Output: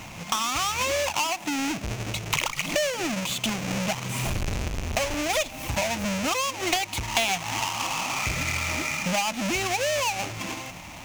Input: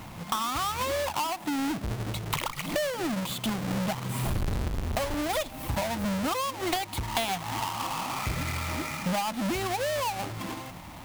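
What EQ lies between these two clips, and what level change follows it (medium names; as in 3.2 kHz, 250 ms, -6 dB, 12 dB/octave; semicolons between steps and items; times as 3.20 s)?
fifteen-band graphic EQ 630 Hz +3 dB, 2.5 kHz +10 dB, 6.3 kHz +11 dB; 0.0 dB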